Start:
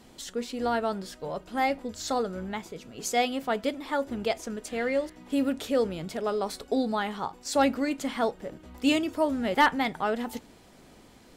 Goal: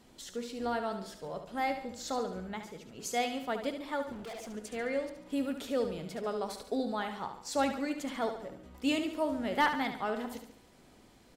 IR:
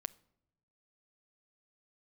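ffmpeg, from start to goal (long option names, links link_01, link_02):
-filter_complex "[0:a]aecho=1:1:71|142|213|284|355:0.376|0.177|0.083|0.039|0.0183,asettb=1/sr,asplit=3[link_01][link_02][link_03];[link_01]atrim=end=4.124[link_04];[link_02]atrim=start=4.12:end=4.55,asetpts=PTS-STARTPTS,afade=type=in:duration=0.004:curve=qsin,afade=type=out:start_time=0.426:duration=0.004:curve=qsin,volume=34dB,asoftclip=hard,volume=-34dB[link_05];[link_03]atrim=start=4.546[link_06];[link_04][link_05]acrossfade=duration=0.004:curve1=hsin:curve2=qsin[link_07];[link_07][link_06]acrossfade=duration=0.004:curve1=qsin:curve2=hsin,volume=-6.5dB"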